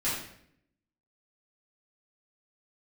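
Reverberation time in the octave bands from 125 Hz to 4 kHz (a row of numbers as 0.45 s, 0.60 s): 0.90 s, 0.90 s, 0.75 s, 0.60 s, 0.65 s, 0.55 s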